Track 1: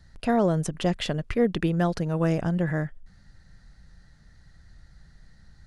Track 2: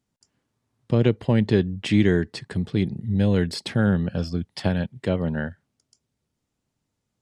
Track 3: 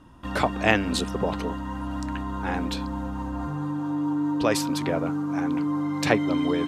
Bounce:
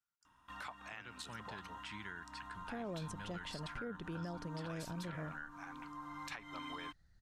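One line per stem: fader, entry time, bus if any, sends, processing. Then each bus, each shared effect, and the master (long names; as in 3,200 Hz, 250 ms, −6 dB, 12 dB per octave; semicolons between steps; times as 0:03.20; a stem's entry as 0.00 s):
−16.5 dB, 2.45 s, no bus, no send, no processing
−16.0 dB, 0.00 s, bus A, no send, parametric band 1,400 Hz +13.5 dB 0.28 octaves
−2.5 dB, 0.25 s, bus A, no send, notch filter 4,700 Hz, Q 19; automatic ducking −10 dB, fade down 0.30 s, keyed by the second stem
bus A: 0.0 dB, low shelf with overshoot 720 Hz −13 dB, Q 1.5; downward compressor 4 to 1, threshold −44 dBFS, peak gain reduction 16.5 dB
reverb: not used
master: brickwall limiter −34 dBFS, peak gain reduction 8 dB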